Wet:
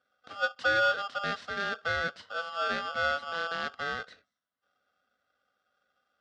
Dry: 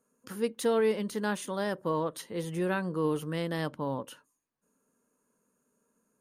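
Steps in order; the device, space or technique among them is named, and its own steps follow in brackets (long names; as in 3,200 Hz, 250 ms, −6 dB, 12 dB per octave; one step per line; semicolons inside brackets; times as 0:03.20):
ring modulator pedal into a guitar cabinet (ring modulator with a square carrier 1,000 Hz; loudspeaker in its box 100–4,400 Hz, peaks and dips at 130 Hz −6 dB, 250 Hz +5 dB, 360 Hz −10 dB, 860 Hz −10 dB, 1,500 Hz +5 dB, 2,400 Hz −10 dB)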